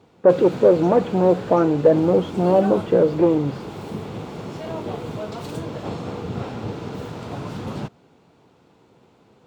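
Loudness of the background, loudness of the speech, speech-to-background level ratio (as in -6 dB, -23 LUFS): -31.5 LUFS, -18.0 LUFS, 13.5 dB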